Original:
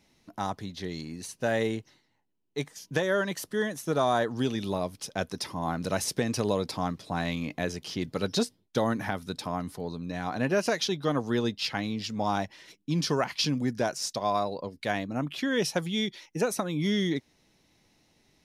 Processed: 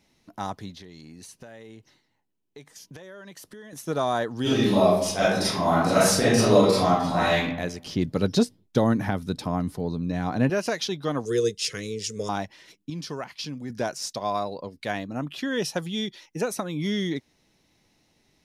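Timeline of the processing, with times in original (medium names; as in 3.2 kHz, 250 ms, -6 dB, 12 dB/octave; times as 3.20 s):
0.73–3.73 s: compression 12:1, threshold -40 dBFS
4.42–7.36 s: reverb throw, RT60 0.82 s, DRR -10.5 dB
7.86–10.50 s: bass shelf 460 Hz +9.5 dB
11.25–12.29 s: FFT filter 180 Hz 0 dB, 260 Hz -12 dB, 450 Hz +14 dB, 800 Hz -28 dB, 1.1 kHz -8 dB, 1.9 kHz -1 dB, 4.4 kHz -1 dB, 6.5 kHz +14 dB, 9.4 kHz +15 dB, 15 kHz -3 dB
12.90–13.70 s: gain -7 dB
14.97–16.27 s: band-stop 2.2 kHz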